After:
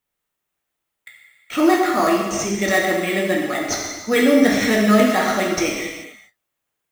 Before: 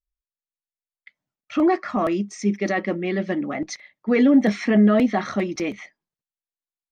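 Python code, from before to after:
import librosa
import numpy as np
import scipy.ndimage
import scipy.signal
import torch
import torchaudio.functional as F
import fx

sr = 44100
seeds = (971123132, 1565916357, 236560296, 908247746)

p1 = fx.tilt_eq(x, sr, slope=3.5)
p2 = fx.sample_hold(p1, sr, seeds[0], rate_hz=5600.0, jitter_pct=0)
p3 = p1 + F.gain(torch.from_numpy(p2), -3.0).numpy()
p4 = fx.rev_gated(p3, sr, seeds[1], gate_ms=460, shape='falling', drr_db=-2.0)
y = F.gain(torch.from_numpy(p4), -1.0).numpy()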